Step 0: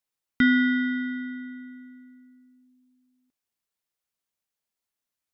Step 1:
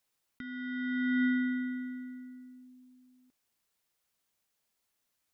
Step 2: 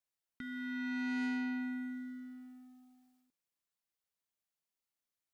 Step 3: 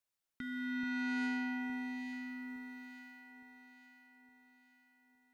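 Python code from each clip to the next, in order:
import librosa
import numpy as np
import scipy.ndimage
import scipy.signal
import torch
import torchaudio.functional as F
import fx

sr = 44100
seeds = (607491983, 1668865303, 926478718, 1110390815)

y1 = fx.over_compress(x, sr, threshold_db=-33.0, ratio=-1.0)
y2 = fx.leveller(y1, sr, passes=2)
y2 = fx.comb_fb(y2, sr, f0_hz=170.0, decay_s=1.5, harmonics='all', damping=0.0, mix_pct=70)
y2 = F.gain(torch.from_numpy(y2), 1.0).numpy()
y3 = fx.echo_alternate(y2, sr, ms=432, hz=1200.0, feedback_pct=66, wet_db=-4)
y3 = F.gain(torch.from_numpy(y3), 1.5).numpy()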